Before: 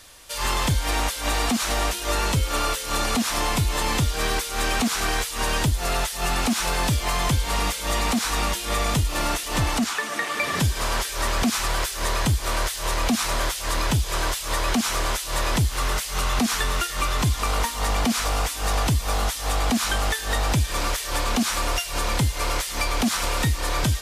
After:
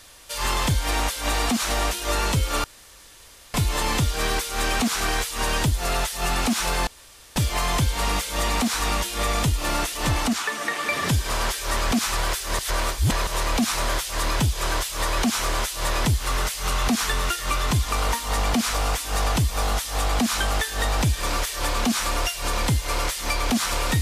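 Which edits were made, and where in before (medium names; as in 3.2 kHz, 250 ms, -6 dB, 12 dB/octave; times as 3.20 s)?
2.64–3.54 s: room tone
6.87 s: insert room tone 0.49 s
12.10–12.78 s: reverse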